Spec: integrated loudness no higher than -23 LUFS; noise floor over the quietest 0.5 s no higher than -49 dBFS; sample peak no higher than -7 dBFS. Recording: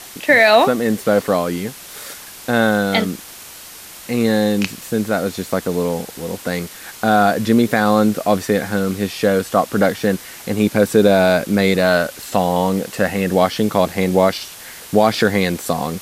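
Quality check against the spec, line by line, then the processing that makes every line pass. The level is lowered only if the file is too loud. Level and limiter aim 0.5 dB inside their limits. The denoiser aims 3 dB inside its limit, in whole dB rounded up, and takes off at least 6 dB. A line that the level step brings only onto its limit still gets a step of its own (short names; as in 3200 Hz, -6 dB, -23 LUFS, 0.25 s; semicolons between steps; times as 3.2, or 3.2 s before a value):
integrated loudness -17.0 LUFS: fail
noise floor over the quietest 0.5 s -37 dBFS: fail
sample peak -1.0 dBFS: fail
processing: denoiser 9 dB, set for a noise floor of -37 dBFS; gain -6.5 dB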